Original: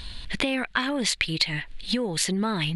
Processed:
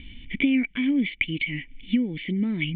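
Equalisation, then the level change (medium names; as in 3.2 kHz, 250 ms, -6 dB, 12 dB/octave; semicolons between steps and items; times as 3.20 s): cascade formant filter i; distance through air 54 m; peaking EQ 2 kHz +14 dB 0.56 oct; +8.5 dB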